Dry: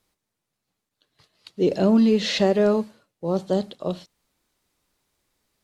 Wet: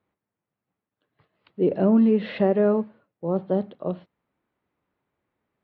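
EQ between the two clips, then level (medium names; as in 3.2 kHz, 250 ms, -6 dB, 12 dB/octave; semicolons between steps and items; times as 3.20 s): high-pass 89 Hz; low-pass 2.6 kHz 12 dB/octave; distance through air 390 m; 0.0 dB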